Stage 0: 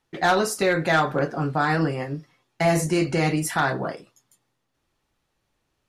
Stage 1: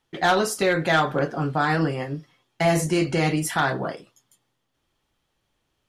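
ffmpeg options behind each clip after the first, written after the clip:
-af "equalizer=f=3200:w=8:g=7.5"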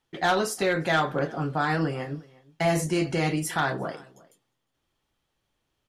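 -filter_complex "[0:a]asplit=2[s0][s1];[s1]adelay=355.7,volume=0.0708,highshelf=f=4000:g=-8[s2];[s0][s2]amix=inputs=2:normalize=0,volume=0.668"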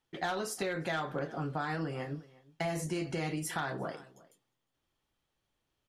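-af "acompressor=threshold=0.0501:ratio=5,volume=0.562"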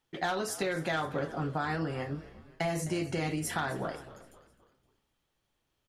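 -filter_complex "[0:a]asplit=5[s0][s1][s2][s3][s4];[s1]adelay=259,afreqshift=-65,volume=0.133[s5];[s2]adelay=518,afreqshift=-130,volume=0.0603[s6];[s3]adelay=777,afreqshift=-195,volume=0.0269[s7];[s4]adelay=1036,afreqshift=-260,volume=0.0122[s8];[s0][s5][s6][s7][s8]amix=inputs=5:normalize=0,volume=1.33"

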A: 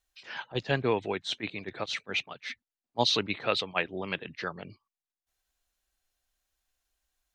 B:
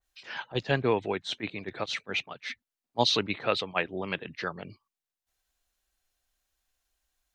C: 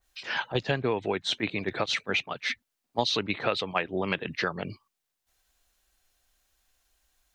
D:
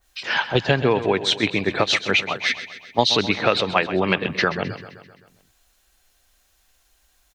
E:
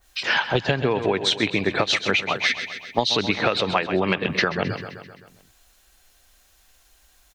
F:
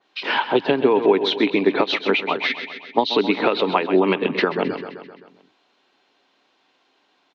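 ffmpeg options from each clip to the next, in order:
-af "adynamicequalizer=threshold=0.00794:dfrequency=2200:dqfactor=0.7:tfrequency=2200:tqfactor=0.7:attack=5:release=100:ratio=0.375:range=2.5:mode=cutabove:tftype=highshelf,volume=1.19"
-af "acompressor=threshold=0.0251:ratio=5,volume=2.51"
-af "aecho=1:1:130|260|390|520|650|780:0.224|0.128|0.0727|0.0415|0.0236|0.0135,volume=2.66"
-af "acompressor=threshold=0.0794:ratio=6,volume=1.68"
-af "highpass=f=180:w=0.5412,highpass=f=180:w=1.3066,equalizer=f=280:t=q:w=4:g=9,equalizer=f=410:t=q:w=4:g=8,equalizer=f=940:t=q:w=4:g=7,equalizer=f=1700:t=q:w=4:g=-4,lowpass=f=4000:w=0.5412,lowpass=f=4000:w=1.3066"

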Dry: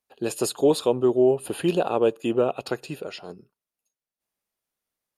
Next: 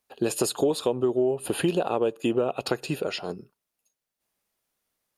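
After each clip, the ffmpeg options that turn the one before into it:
-af "acompressor=threshold=0.0447:ratio=6,volume=2"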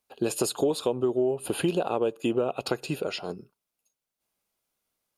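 -af "bandreject=f=1800:w=9.2,volume=0.841"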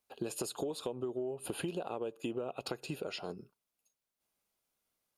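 -af "acompressor=threshold=0.02:ratio=3,volume=0.708"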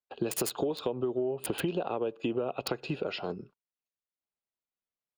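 -filter_complex "[0:a]agate=range=0.1:threshold=0.00112:ratio=16:detection=peak,highshelf=f=11000:g=6,acrossover=split=300|4500[s0][s1][s2];[s2]acrusher=bits=5:mix=0:aa=0.000001[s3];[s0][s1][s3]amix=inputs=3:normalize=0,volume=2.11"

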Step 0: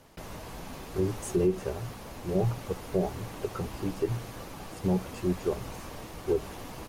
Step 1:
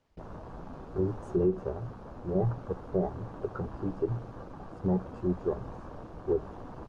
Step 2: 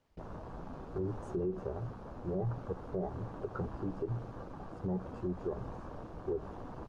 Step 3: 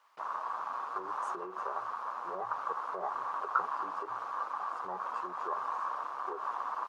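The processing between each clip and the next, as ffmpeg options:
-af "afwtdn=0.00891,lowpass=5700,volume=0.891"
-af "alimiter=level_in=1.19:limit=0.0631:level=0:latency=1:release=91,volume=0.841,volume=0.841"
-af "highpass=f=1100:t=q:w=4.9,volume=2.37"

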